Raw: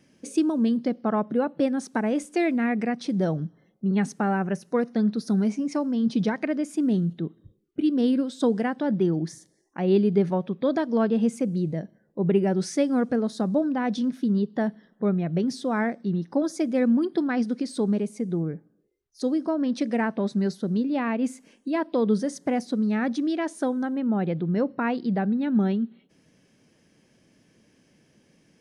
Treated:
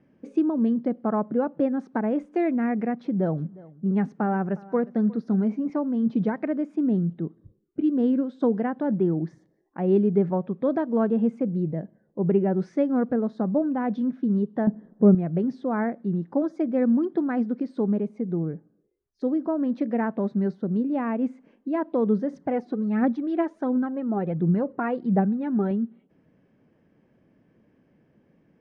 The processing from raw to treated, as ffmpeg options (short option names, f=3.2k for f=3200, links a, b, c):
-filter_complex "[0:a]asettb=1/sr,asplit=3[a][b][c];[a]atrim=end=3.024[d];[b]atrim=start=3.02:end=5.7,asetpts=PTS-STARTPTS,afade=t=in:d=0.004:c=qsin,afade=t=out:st=2.676:d=0.004:c=qsin,aecho=1:1:358:0.0891,atrim=end_sample=118188[e];[c]atrim=start=5.696[f];[d][e]acrossfade=d=0.004:c1=hsin:c2=qsin[g];[g][f]acrossfade=d=0.004:c1=qsin:c2=hsin,asettb=1/sr,asplit=3[h][i][j];[h]atrim=end=14.674[k];[i]atrim=start=14.67:end=15.15,asetpts=PTS-STARTPTS,afade=t=in:d=0.004:c=qsin,afade=t=out:st=0.476:d=0.004:c=qsin,tiltshelf=f=1.1k:g=9.5[l];[j]atrim=start=15.146[m];[k][l]acrossfade=d=0.004:c1=hsin:c2=qsin[n];[n][m]acrossfade=d=0.004:c1=qsin:c2=hsin,asettb=1/sr,asplit=3[o][p][q];[o]atrim=end=22.334[r];[p]atrim=start=22.33:end=25.71,asetpts=PTS-STARTPTS,afade=t=in:d=0.004:c=qsin,afade=t=out:st=3.376:d=0.004:c=qsin,aphaser=in_gain=1:out_gain=1:delay=3:decay=0.5:speed=1.4:type=triangular[s];[q]atrim=start=25.706[t];[r][s]acrossfade=d=0.004:c1=hsin:c2=qsin[u];[u][t]acrossfade=d=0.004:c1=qsin:c2=hsin,lowpass=1.4k"